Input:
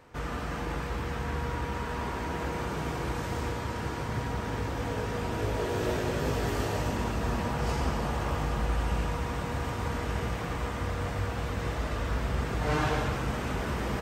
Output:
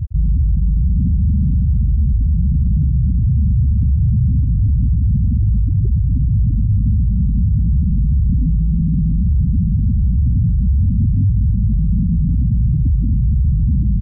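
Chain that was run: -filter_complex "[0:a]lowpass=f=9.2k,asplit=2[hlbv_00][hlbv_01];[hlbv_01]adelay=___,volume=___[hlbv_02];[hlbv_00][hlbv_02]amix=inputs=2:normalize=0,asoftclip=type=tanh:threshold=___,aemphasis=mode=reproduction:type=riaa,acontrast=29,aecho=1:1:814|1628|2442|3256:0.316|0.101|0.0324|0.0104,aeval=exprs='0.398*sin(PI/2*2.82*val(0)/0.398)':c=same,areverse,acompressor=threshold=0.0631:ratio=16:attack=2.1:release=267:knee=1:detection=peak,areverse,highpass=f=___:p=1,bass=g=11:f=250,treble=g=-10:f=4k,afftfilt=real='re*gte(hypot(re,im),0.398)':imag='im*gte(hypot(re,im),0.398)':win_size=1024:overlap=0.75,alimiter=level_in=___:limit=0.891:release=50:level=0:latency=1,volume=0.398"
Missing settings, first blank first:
41, 0.355, 0.0224, 56, 6.31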